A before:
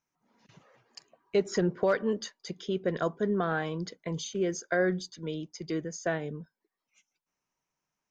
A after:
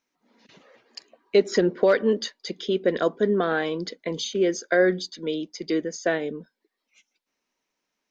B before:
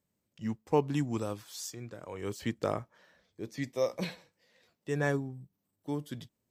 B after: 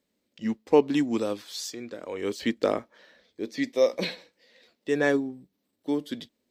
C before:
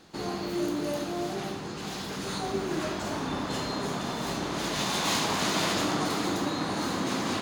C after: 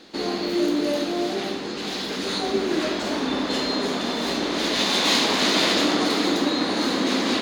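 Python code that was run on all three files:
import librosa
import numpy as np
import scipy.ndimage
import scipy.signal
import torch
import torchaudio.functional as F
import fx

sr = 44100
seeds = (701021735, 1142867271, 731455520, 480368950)

y = fx.graphic_eq(x, sr, hz=(125, 250, 500, 2000, 4000), db=(-12, 10, 7, 6, 10))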